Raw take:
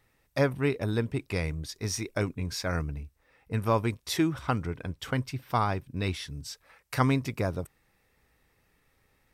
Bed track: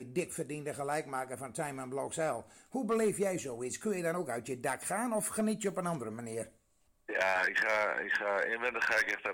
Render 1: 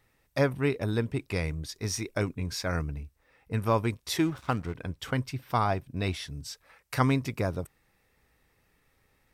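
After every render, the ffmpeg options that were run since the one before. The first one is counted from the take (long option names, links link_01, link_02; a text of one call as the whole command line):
ffmpeg -i in.wav -filter_complex "[0:a]asettb=1/sr,asplit=3[link_01][link_02][link_03];[link_01]atrim=end=4.184[link_04];[link_02]atrim=start=4.18:end=4.75,asetpts=PTS-STARTPTS,afade=type=in:duration=0.004:curve=qsin,afade=type=out:start_time=0.566:duration=0.004:curve=qsin,aeval=exprs='sgn(val(0))*max(abs(val(0))-0.00631,0)':channel_layout=same[link_05];[link_03]atrim=start=4.746[link_06];[link_04][link_05]acrossfade=duration=0.004:curve1=hsin:curve2=qsin[link_07];[link_07][link_06]acrossfade=duration=0.004:curve1=qsin:curve2=hsin,asettb=1/sr,asplit=3[link_08][link_09][link_10];[link_08]atrim=end=5.654[link_11];[link_09]atrim=start=5.65:end=6.34,asetpts=PTS-STARTPTS,afade=type=in:duration=0.004:curve=qsin,afade=type=out:start_time=0.686:duration=0.004:curve=qsin,equalizer=frequency=680:width_type=o:width=0.29:gain=8[link_12];[link_10]atrim=start=6.336[link_13];[link_11][link_12]acrossfade=duration=0.004:curve1=hsin:curve2=qsin[link_14];[link_14][link_13]acrossfade=duration=0.004:curve1=qsin:curve2=hsin" out.wav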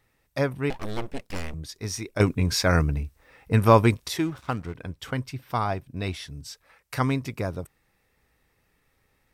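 ffmpeg -i in.wav -filter_complex "[0:a]asettb=1/sr,asplit=3[link_01][link_02][link_03];[link_01]atrim=end=0.704[link_04];[link_02]atrim=start=0.7:end=1.54,asetpts=PTS-STARTPTS,afade=type=in:duration=0.004:curve=qsin,afade=type=out:start_time=0.836:duration=0.004:curve=qsin,aeval=exprs='abs(val(0))':channel_layout=same[link_05];[link_03]atrim=start=1.536[link_06];[link_04][link_05]acrossfade=duration=0.004:curve1=hsin:curve2=qsin[link_07];[link_07][link_06]acrossfade=duration=0.004:curve1=qsin:curve2=hsin,asplit=3[link_08][link_09][link_10];[link_08]atrim=end=2.202[link_11];[link_09]atrim=start=2.198:end=4.082,asetpts=PTS-STARTPTS,volume=9.5dB[link_12];[link_10]atrim=start=4.078[link_13];[link_11][link_12]acrossfade=duration=0.004:curve1=hsin:curve2=hsin[link_14];[link_14][link_13]acrossfade=duration=0.004:curve1=hsin:curve2=hsin" out.wav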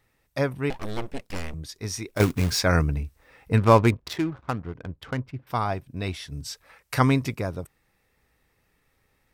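ffmpeg -i in.wav -filter_complex "[0:a]asplit=3[link_01][link_02][link_03];[link_01]afade=type=out:start_time=2.08:duration=0.02[link_04];[link_02]acrusher=bits=3:mode=log:mix=0:aa=0.000001,afade=type=in:start_time=2.08:duration=0.02,afade=type=out:start_time=2.59:duration=0.02[link_05];[link_03]afade=type=in:start_time=2.59:duration=0.02[link_06];[link_04][link_05][link_06]amix=inputs=3:normalize=0,asettb=1/sr,asplit=3[link_07][link_08][link_09];[link_07]atrim=end=3.574[link_10];[link_08]atrim=start=3.57:end=5.47,asetpts=PTS-STARTPTS,afade=type=in:duration=0.004:curve=qsin,afade=type=out:start_time=1.896:duration=0.004:curve=qsin,adynamicsmooth=sensitivity=6:basefreq=960[link_11];[link_09]atrim=start=5.466[link_12];[link_10][link_11]acrossfade=duration=0.004:curve1=hsin:curve2=qsin[link_13];[link_13][link_12]acrossfade=duration=0.004:curve1=qsin:curve2=hsin,asplit=3[link_14][link_15][link_16];[link_14]atrim=end=6.322[link_17];[link_15]atrim=start=6.318:end=7.352,asetpts=PTS-STARTPTS,volume=4.5dB[link_18];[link_16]atrim=start=7.348[link_19];[link_17][link_18]acrossfade=duration=0.004:curve1=hsin:curve2=hsin[link_20];[link_20][link_19]acrossfade=duration=0.004:curve1=hsin:curve2=hsin" out.wav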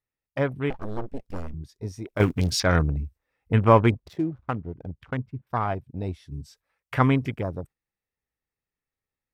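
ffmpeg -i in.wav -af "agate=range=-7dB:threshold=-44dB:ratio=16:detection=peak,afwtdn=0.0178" out.wav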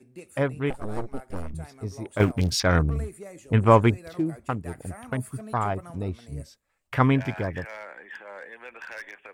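ffmpeg -i in.wav -i bed.wav -filter_complex "[1:a]volume=-9.5dB[link_01];[0:a][link_01]amix=inputs=2:normalize=0" out.wav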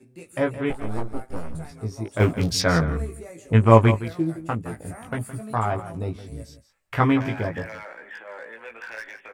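ffmpeg -i in.wav -filter_complex "[0:a]asplit=2[link_01][link_02];[link_02]adelay=18,volume=-3dB[link_03];[link_01][link_03]amix=inputs=2:normalize=0,aecho=1:1:167:0.211" out.wav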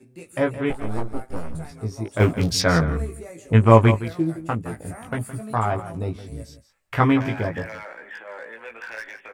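ffmpeg -i in.wav -af "volume=1.5dB,alimiter=limit=-1dB:level=0:latency=1" out.wav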